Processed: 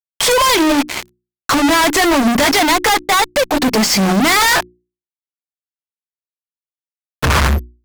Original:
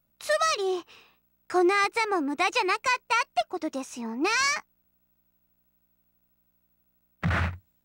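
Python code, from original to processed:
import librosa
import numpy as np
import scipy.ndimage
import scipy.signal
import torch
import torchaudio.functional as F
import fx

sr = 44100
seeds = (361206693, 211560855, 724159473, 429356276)

y = fx.pitch_heads(x, sr, semitones=-3.5)
y = fx.fuzz(y, sr, gain_db=53.0, gate_db=-51.0)
y = fx.hum_notches(y, sr, base_hz=60, count=6)
y = y * librosa.db_to_amplitude(2.0)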